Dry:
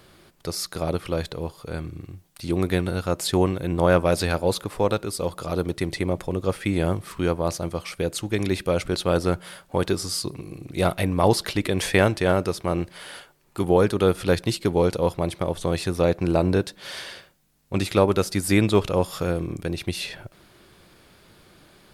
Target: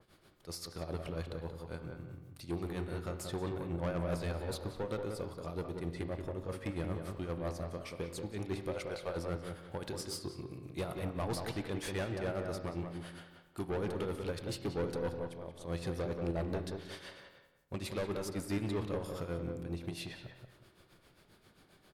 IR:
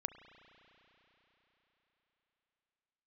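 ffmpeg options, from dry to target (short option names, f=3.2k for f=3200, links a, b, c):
-filter_complex "[0:a]asettb=1/sr,asplit=3[a][b][c];[a]atrim=end=8.684[d];[b]atrim=start=8.68:end=9.16,asetpts=PTS-STARTPTS,afade=t=in:d=0.004:c=qsin,afade=t=out:st=0.476:d=0.004:c=qsin,lowshelf=f=430:t=q:w=1.5:g=-11[e];[c]atrim=start=9.156[f];[d][e]acrossfade=d=0.004:c1=hsin:c2=qsin[g];[g][f]acrossfade=d=0.004:c1=qsin:c2=hsin,asplit=3[h][i][j];[h]afade=t=out:st=15.16:d=0.02[k];[i]acompressor=threshold=-31dB:ratio=6,afade=t=in:st=15.16:d=0.02,afade=t=out:st=15.64:d=0.02[l];[j]afade=t=in:st=15.64:d=0.02[m];[k][l][m]amix=inputs=3:normalize=0,tremolo=f=7.5:d=0.82,asoftclip=type=tanh:threshold=-22.5dB,asplit=2[n][o];[o]adelay=181,lowpass=f=1.7k:p=1,volume=-4.5dB,asplit=2[p][q];[q]adelay=181,lowpass=f=1.7k:p=1,volume=0.32,asplit=2[r][s];[s]adelay=181,lowpass=f=1.7k:p=1,volume=0.32,asplit=2[t][u];[u]adelay=181,lowpass=f=1.7k:p=1,volume=0.32[v];[n][p][r][t][v]amix=inputs=5:normalize=0[w];[1:a]atrim=start_sample=2205,afade=t=out:st=0.4:d=0.01,atrim=end_sample=18081,asetrate=61740,aresample=44100[x];[w][x]afir=irnorm=-1:irlink=0,adynamicequalizer=threshold=0.00282:dfrequency=2100:dqfactor=0.7:tfrequency=2100:tqfactor=0.7:attack=5:release=100:ratio=0.375:range=1.5:mode=cutabove:tftype=highshelf,volume=-3.5dB"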